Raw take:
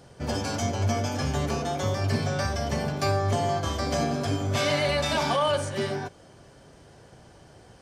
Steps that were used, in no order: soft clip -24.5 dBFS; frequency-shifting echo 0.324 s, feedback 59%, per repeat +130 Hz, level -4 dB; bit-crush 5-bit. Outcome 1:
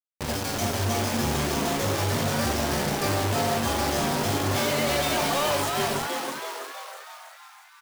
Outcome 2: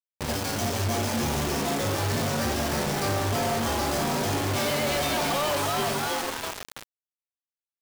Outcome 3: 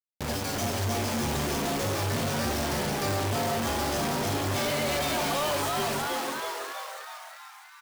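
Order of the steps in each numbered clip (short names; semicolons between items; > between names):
soft clip > bit-crush > frequency-shifting echo; frequency-shifting echo > soft clip > bit-crush; bit-crush > frequency-shifting echo > soft clip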